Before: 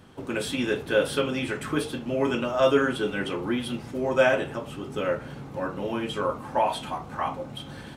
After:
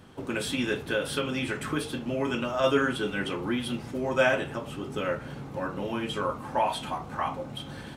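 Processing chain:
dynamic equaliser 480 Hz, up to −4 dB, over −32 dBFS, Q 0.85
0:00.75–0:02.64: downward compressor, threshold −23 dBFS, peak gain reduction 4.5 dB

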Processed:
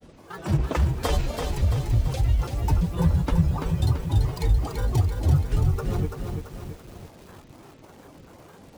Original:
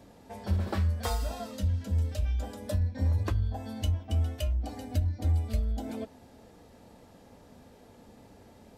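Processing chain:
granular cloud, spray 24 ms, pitch spread up and down by 12 semitones
feedback echo at a low word length 336 ms, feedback 55%, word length 9 bits, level −5 dB
level +6.5 dB

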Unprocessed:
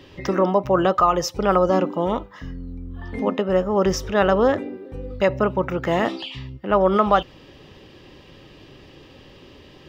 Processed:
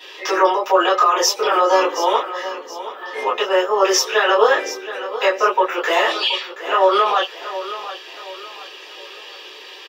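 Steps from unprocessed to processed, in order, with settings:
elliptic high-pass filter 370 Hz, stop band 70 dB
tilt shelving filter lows −9.5 dB, about 660 Hz
brickwall limiter −12.5 dBFS, peak gain reduction 11 dB
repeating echo 725 ms, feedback 37%, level −13 dB
convolution reverb, pre-delay 3 ms, DRR −11 dB
level −4.5 dB

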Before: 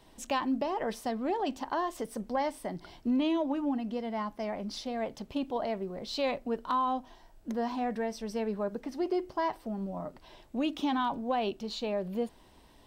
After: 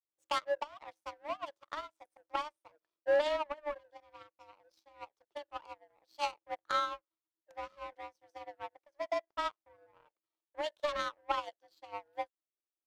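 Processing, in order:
frequency shifter +300 Hz
power curve on the samples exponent 2
expander for the loud parts 2.5 to 1, over −45 dBFS
level +6.5 dB

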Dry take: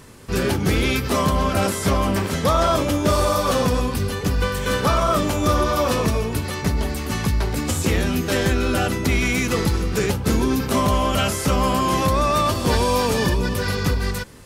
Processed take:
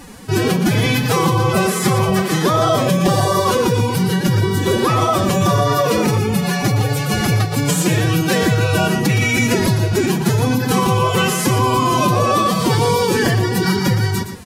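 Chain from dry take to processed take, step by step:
downward compressor, threshold −19 dBFS, peak gain reduction 5.5 dB
phase-vocoder pitch shift with formants kept +11.5 semitones
on a send: single-tap delay 118 ms −9.5 dB
on the sum: level +7.5 dB

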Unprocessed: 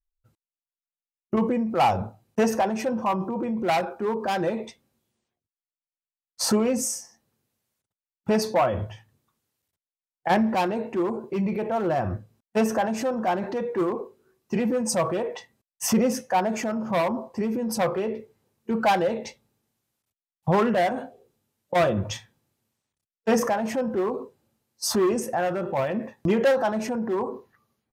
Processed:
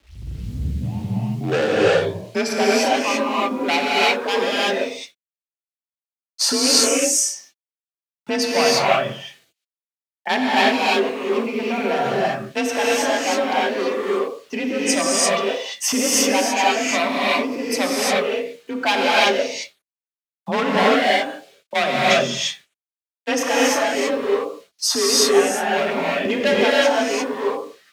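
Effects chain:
turntable start at the beginning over 2.76 s
bit reduction 10 bits
reverb whose tail is shaped and stops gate 370 ms rising, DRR −6 dB
frequency shifter +36 Hz
meter weighting curve D
level −1.5 dB

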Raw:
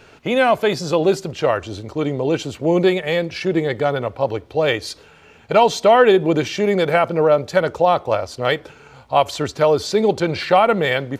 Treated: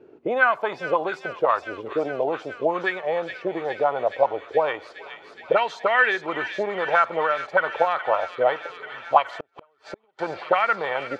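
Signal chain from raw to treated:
envelope filter 340–1,800 Hz, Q 3.7, up, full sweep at −9.5 dBFS
delay with a high-pass on its return 419 ms, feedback 81%, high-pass 2,400 Hz, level −5 dB
0:09.28–0:10.19: gate with flip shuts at −26 dBFS, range −38 dB
level +6 dB

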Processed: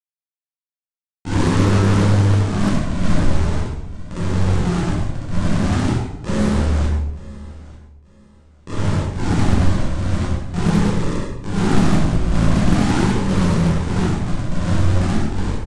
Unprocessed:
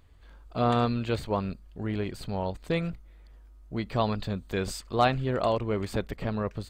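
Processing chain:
every overlapping window played backwards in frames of 93 ms
parametric band 1,500 Hz +5.5 dB 0.87 octaves
log-companded quantiser 2 bits
graphic EQ with 15 bands 100 Hz −10 dB, 1,000 Hz +5 dB, 4,000 Hz −11 dB
sample-and-hold swept by an LFO 35×, swing 60% 1 Hz
repeating echo 381 ms, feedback 27%, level −20.5 dB
rectangular room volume 35 cubic metres, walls mixed, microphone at 1.4 metres
wrong playback speed 78 rpm record played at 33 rpm
highs frequency-modulated by the lows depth 0.45 ms

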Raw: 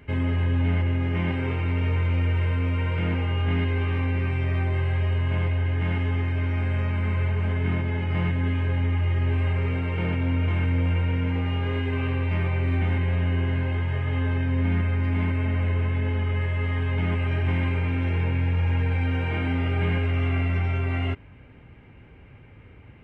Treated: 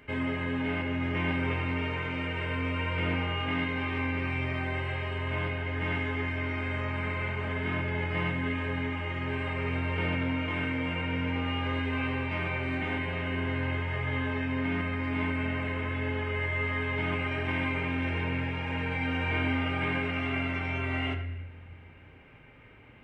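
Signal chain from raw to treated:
low-shelf EQ 270 Hz −11 dB
on a send: convolution reverb RT60 0.85 s, pre-delay 3 ms, DRR 5 dB

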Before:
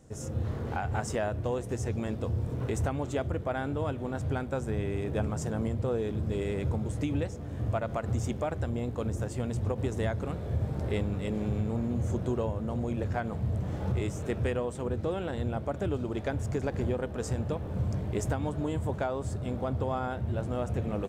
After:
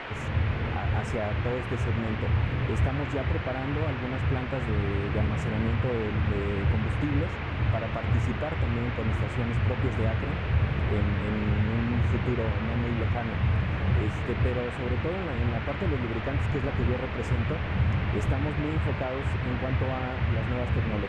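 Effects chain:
spectral tilt −2.5 dB per octave
noise in a band 220–2,500 Hz −35 dBFS
level −3 dB

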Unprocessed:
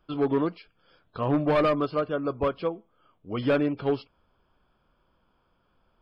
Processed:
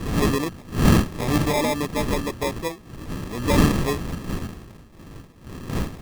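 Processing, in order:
wind on the microphone 240 Hz −25 dBFS
decimation without filtering 30×

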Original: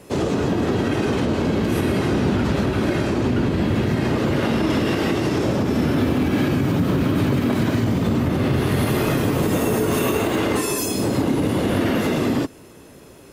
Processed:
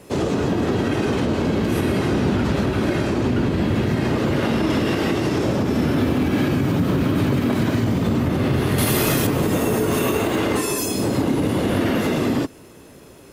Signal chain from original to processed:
surface crackle 340 per second −50 dBFS
0:08.78–0:09.27: high-shelf EQ 3,800 Hz +12 dB

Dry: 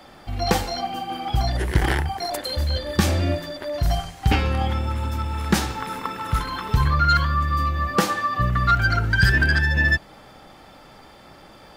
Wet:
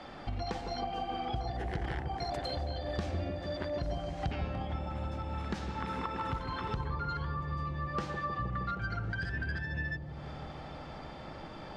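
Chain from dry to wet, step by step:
downward compressor 12 to 1, threshold −33 dBFS, peak gain reduction 21.5 dB
high-frequency loss of the air 110 metres
bucket-brigade delay 156 ms, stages 1,024, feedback 84%, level −6.5 dB

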